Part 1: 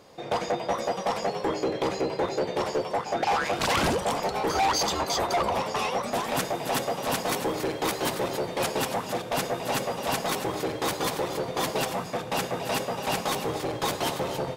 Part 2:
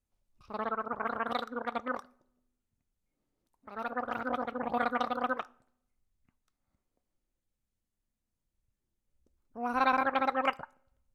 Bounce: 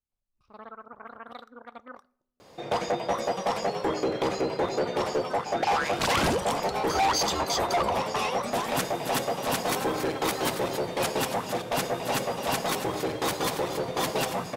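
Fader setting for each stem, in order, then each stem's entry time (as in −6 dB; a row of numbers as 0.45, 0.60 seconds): 0.0, −10.0 decibels; 2.40, 0.00 seconds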